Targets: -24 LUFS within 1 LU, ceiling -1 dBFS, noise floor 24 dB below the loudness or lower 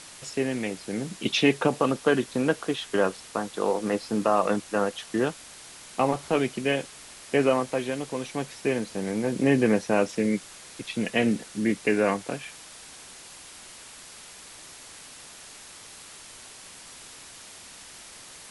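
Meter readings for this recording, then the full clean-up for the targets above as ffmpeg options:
noise floor -46 dBFS; noise floor target -51 dBFS; loudness -26.5 LUFS; peak -8.0 dBFS; loudness target -24.0 LUFS
-> -af "afftdn=nr=6:nf=-46"
-af "volume=2.5dB"

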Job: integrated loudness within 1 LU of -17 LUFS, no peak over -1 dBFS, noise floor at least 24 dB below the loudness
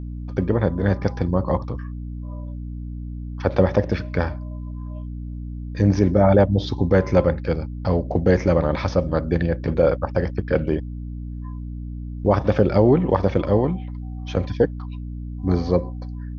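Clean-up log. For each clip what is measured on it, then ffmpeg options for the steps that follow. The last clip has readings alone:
hum 60 Hz; harmonics up to 300 Hz; hum level -28 dBFS; loudness -21.0 LUFS; peak -3.0 dBFS; loudness target -17.0 LUFS
-> -af "bandreject=f=60:t=h:w=4,bandreject=f=120:t=h:w=4,bandreject=f=180:t=h:w=4,bandreject=f=240:t=h:w=4,bandreject=f=300:t=h:w=4"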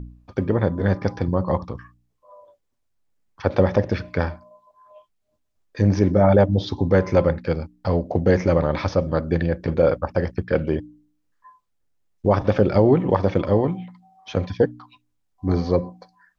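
hum none; loudness -21.5 LUFS; peak -3.0 dBFS; loudness target -17.0 LUFS
-> -af "volume=4.5dB,alimiter=limit=-1dB:level=0:latency=1"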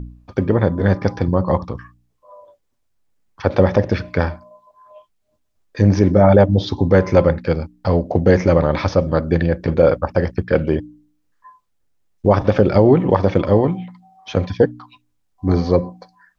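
loudness -17.0 LUFS; peak -1.0 dBFS; noise floor -67 dBFS

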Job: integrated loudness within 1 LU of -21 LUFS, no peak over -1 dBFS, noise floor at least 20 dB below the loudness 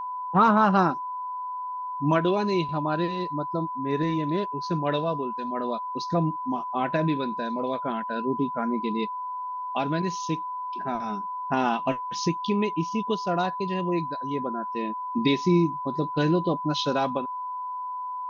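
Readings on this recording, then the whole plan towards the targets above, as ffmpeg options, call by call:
steady tone 1000 Hz; tone level -30 dBFS; loudness -27.0 LUFS; peak -9.0 dBFS; loudness target -21.0 LUFS
-> -af "bandreject=f=1k:w=30"
-af "volume=6dB"

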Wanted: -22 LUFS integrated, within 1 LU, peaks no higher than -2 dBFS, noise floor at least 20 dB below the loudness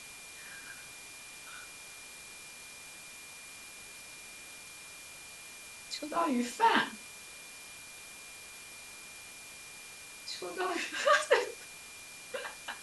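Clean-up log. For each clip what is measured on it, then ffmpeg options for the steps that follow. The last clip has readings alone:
steady tone 2400 Hz; tone level -51 dBFS; noise floor -49 dBFS; noise floor target -57 dBFS; loudness -37.0 LUFS; peak -12.5 dBFS; loudness target -22.0 LUFS
-> -af "bandreject=f=2.4k:w=30"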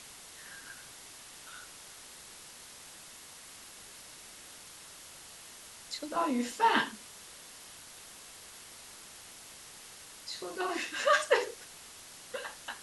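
steady tone none; noise floor -51 dBFS; noise floor target -53 dBFS
-> -af "afftdn=nr=6:nf=-51"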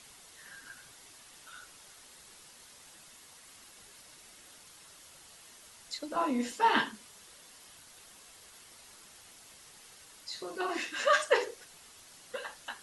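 noise floor -56 dBFS; loudness -31.5 LUFS; peak -12.5 dBFS; loudness target -22.0 LUFS
-> -af "volume=9.5dB"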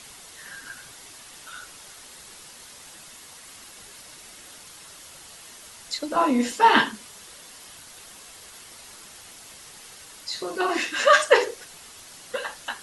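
loudness -22.0 LUFS; peak -3.0 dBFS; noise floor -46 dBFS

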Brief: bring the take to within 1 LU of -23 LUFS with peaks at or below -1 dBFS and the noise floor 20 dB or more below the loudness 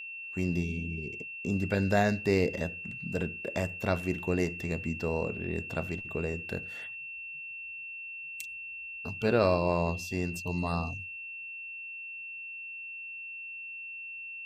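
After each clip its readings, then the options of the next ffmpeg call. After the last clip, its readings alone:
steady tone 2700 Hz; tone level -39 dBFS; loudness -33.0 LUFS; peak -10.5 dBFS; loudness target -23.0 LUFS
-> -af "bandreject=f=2.7k:w=30"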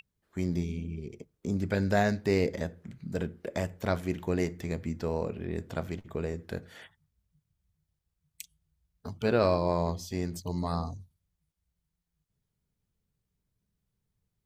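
steady tone none; loudness -32.0 LUFS; peak -11.0 dBFS; loudness target -23.0 LUFS
-> -af "volume=9dB"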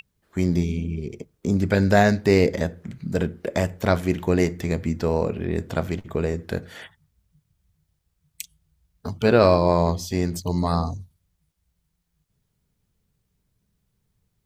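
loudness -23.0 LUFS; peak -2.0 dBFS; noise floor -74 dBFS

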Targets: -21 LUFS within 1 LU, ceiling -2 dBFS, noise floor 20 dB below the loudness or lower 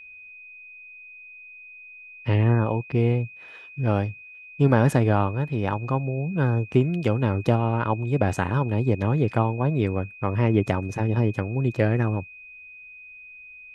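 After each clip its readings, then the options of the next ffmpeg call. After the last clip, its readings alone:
steady tone 2500 Hz; tone level -42 dBFS; loudness -24.0 LUFS; peak -3.5 dBFS; loudness target -21.0 LUFS
-> -af "bandreject=f=2.5k:w=30"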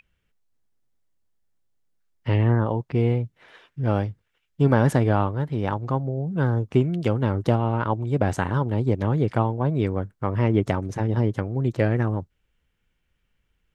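steady tone none; loudness -24.0 LUFS; peak -4.0 dBFS; loudness target -21.0 LUFS
-> -af "volume=3dB,alimiter=limit=-2dB:level=0:latency=1"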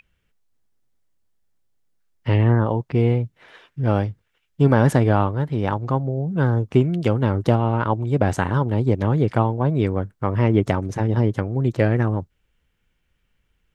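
loudness -21.0 LUFS; peak -2.0 dBFS; noise floor -70 dBFS

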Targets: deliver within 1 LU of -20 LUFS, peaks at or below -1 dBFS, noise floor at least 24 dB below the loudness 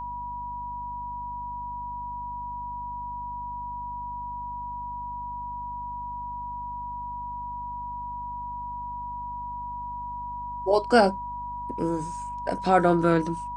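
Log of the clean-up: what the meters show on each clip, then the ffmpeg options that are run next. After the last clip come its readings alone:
hum 50 Hz; harmonics up to 250 Hz; hum level -41 dBFS; steady tone 970 Hz; tone level -32 dBFS; loudness -30.0 LUFS; peak -7.5 dBFS; loudness target -20.0 LUFS
-> -af "bandreject=f=50:t=h:w=4,bandreject=f=100:t=h:w=4,bandreject=f=150:t=h:w=4,bandreject=f=200:t=h:w=4,bandreject=f=250:t=h:w=4"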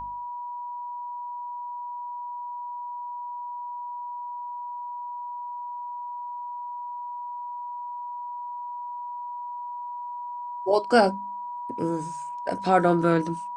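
hum none; steady tone 970 Hz; tone level -32 dBFS
-> -af "bandreject=f=970:w=30"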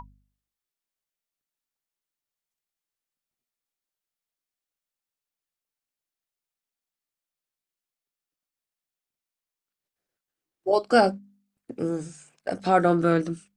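steady tone none; loudness -24.0 LUFS; peak -7.5 dBFS; loudness target -20.0 LUFS
-> -af "volume=4dB"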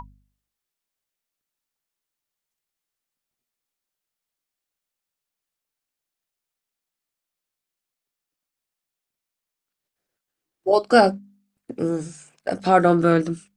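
loudness -20.0 LUFS; peak -3.5 dBFS; noise floor -86 dBFS

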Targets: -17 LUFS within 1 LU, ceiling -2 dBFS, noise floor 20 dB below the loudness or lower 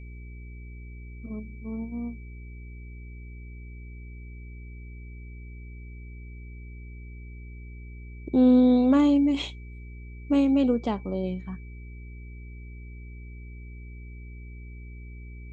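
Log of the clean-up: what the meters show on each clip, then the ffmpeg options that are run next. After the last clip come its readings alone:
hum 60 Hz; harmonics up to 420 Hz; hum level -39 dBFS; steady tone 2300 Hz; tone level -53 dBFS; loudness -24.0 LUFS; peak -10.5 dBFS; loudness target -17.0 LUFS
-> -af "bandreject=f=60:t=h:w=4,bandreject=f=120:t=h:w=4,bandreject=f=180:t=h:w=4,bandreject=f=240:t=h:w=4,bandreject=f=300:t=h:w=4,bandreject=f=360:t=h:w=4,bandreject=f=420:t=h:w=4"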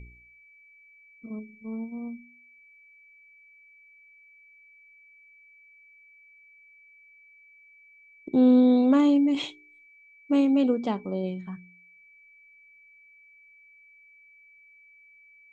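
hum none; steady tone 2300 Hz; tone level -53 dBFS
-> -af "bandreject=f=2.3k:w=30"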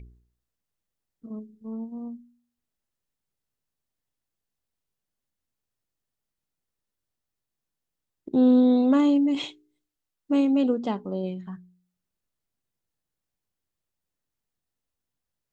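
steady tone none; loudness -22.5 LUFS; peak -11.0 dBFS; loudness target -17.0 LUFS
-> -af "volume=5.5dB"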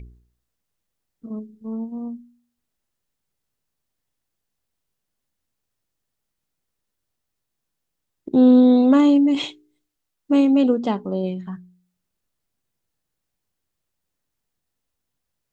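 loudness -17.0 LUFS; peak -5.5 dBFS; noise floor -80 dBFS

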